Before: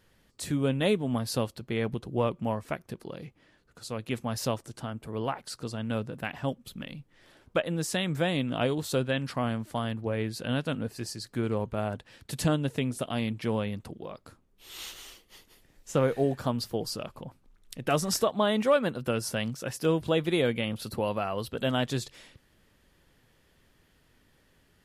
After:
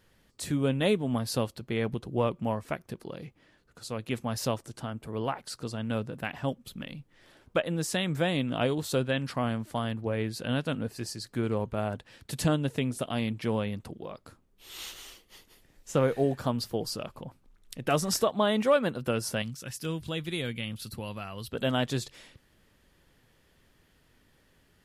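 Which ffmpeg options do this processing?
-filter_complex "[0:a]asettb=1/sr,asplit=3[s0][s1][s2];[s0]atrim=end=19.424[s3];[s1]atrim=start=19.42:end=21.51,asetpts=PTS-STARTPTS,afade=t=in:d=0.004:c=qsin,afade=t=out:st=2.086:d=0.004:c=qsin,equalizer=f=600:t=o:w=2.6:g=-12.5[s4];[s2]atrim=start=21.506[s5];[s3][s4]acrossfade=d=0.004:c1=hsin:c2=qsin[s6];[s6][s5]acrossfade=d=0.004:c1=qsin:c2=hsin"

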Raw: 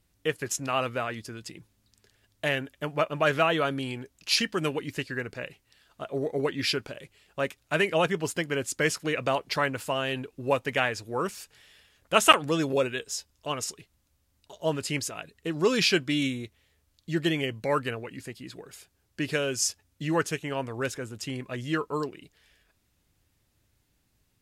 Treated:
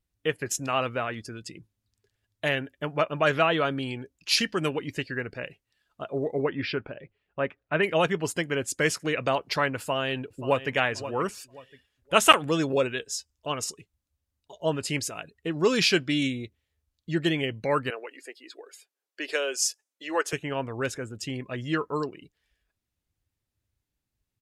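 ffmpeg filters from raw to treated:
-filter_complex "[0:a]asplit=3[s0][s1][s2];[s0]afade=t=out:st=6.42:d=0.02[s3];[s1]lowpass=2400,afade=t=in:st=6.42:d=0.02,afade=t=out:st=7.82:d=0.02[s4];[s2]afade=t=in:st=7.82:d=0.02[s5];[s3][s4][s5]amix=inputs=3:normalize=0,asplit=2[s6][s7];[s7]afade=t=in:st=9.77:d=0.01,afade=t=out:st=10.74:d=0.01,aecho=0:1:530|1060|1590:0.237137|0.0711412|0.0213424[s8];[s6][s8]amix=inputs=2:normalize=0,asettb=1/sr,asplit=3[s9][s10][s11];[s9]atrim=end=17.904[s12];[s10]atrim=start=17.9:end=20.33,asetpts=PTS-STARTPTS,afade=t=in:d=0.004:c=qsin,afade=t=out:st=2.426:d=0.004:c=qsin,highpass=f=390:w=0.5412,highpass=f=390:w=1.3066[s13];[s11]atrim=start=20.326[s14];[s12][s13]acrossfade=d=0.004:c1=hsin:c2=qsin[s15];[s15][s14]acrossfade=d=0.004:c1=qsin:c2=hsin,afftdn=nr=15:nf=-51,volume=1.12"

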